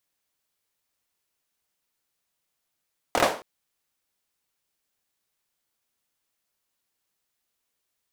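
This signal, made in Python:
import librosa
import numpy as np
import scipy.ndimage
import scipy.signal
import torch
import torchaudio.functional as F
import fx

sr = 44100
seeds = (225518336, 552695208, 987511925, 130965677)

y = fx.drum_clap(sr, seeds[0], length_s=0.27, bursts=4, spacing_ms=25, hz=580.0, decay_s=0.37)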